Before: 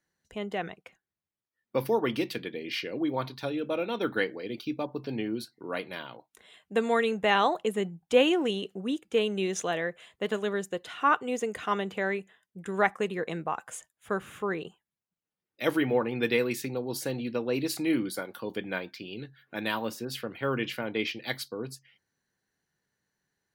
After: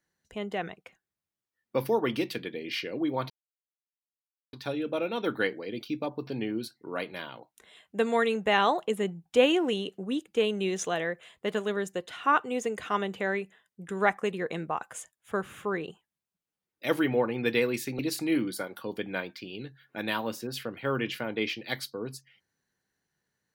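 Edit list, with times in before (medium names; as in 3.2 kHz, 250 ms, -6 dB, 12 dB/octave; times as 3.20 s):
3.30 s: insert silence 1.23 s
16.76–17.57 s: delete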